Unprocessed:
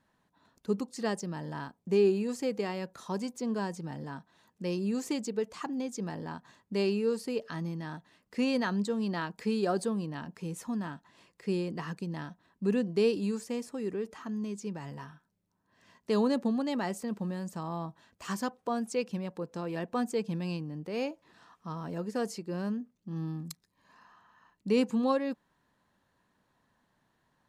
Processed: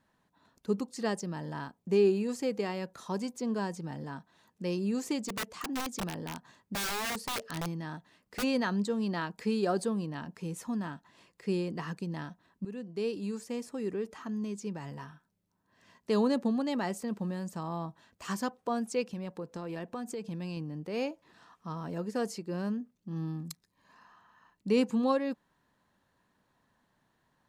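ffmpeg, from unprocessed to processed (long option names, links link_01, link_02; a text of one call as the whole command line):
ffmpeg -i in.wav -filter_complex "[0:a]asplit=3[link_01][link_02][link_03];[link_01]afade=type=out:start_time=5.28:duration=0.02[link_04];[link_02]aeval=exprs='(mod(28.2*val(0)+1,2)-1)/28.2':channel_layout=same,afade=type=in:start_time=5.28:duration=0.02,afade=type=out:start_time=8.42:duration=0.02[link_05];[link_03]afade=type=in:start_time=8.42:duration=0.02[link_06];[link_04][link_05][link_06]amix=inputs=3:normalize=0,asettb=1/sr,asplit=3[link_07][link_08][link_09];[link_07]atrim=end=19.064[link_10];[link_08]atrim=start=19.06:end=20.57,asetpts=PTS-STARTPTS,afade=type=in:duration=0.004:curve=qsin,afade=type=out:start_time=1.506:duration=0.004:curve=qsin,acompressor=threshold=-34dB:ratio=6:attack=3.2:release=140:knee=1:detection=peak[link_11];[link_09]atrim=start=20.566[link_12];[link_10][link_11]acrossfade=duration=0.004:curve1=hsin:curve2=qsin[link_13];[link_13][link_12]acrossfade=duration=0.004:curve1=qsin:curve2=hsin,asplit=2[link_14][link_15];[link_14]atrim=end=12.65,asetpts=PTS-STARTPTS,afade=type=out:start_time=12.646:duration=0.004:curve=hsin:silence=0.158489[link_16];[link_15]atrim=start=12.65,asetpts=PTS-STARTPTS,afade=type=in:duration=1.14:silence=0.158489[link_17];[link_16][link_17]concat=n=2:v=0:a=1" out.wav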